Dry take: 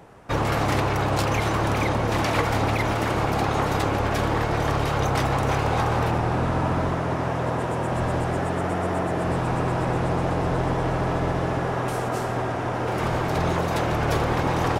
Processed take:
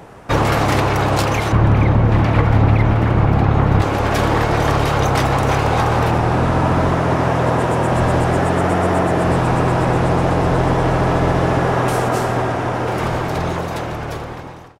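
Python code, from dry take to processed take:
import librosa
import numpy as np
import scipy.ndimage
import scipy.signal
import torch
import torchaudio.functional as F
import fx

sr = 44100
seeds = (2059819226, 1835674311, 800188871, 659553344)

y = fx.fade_out_tail(x, sr, length_s=2.83)
y = fx.bass_treble(y, sr, bass_db=11, treble_db=-15, at=(1.52, 3.82))
y = fx.rider(y, sr, range_db=3, speed_s=0.5)
y = F.gain(torch.from_numpy(y), 6.0).numpy()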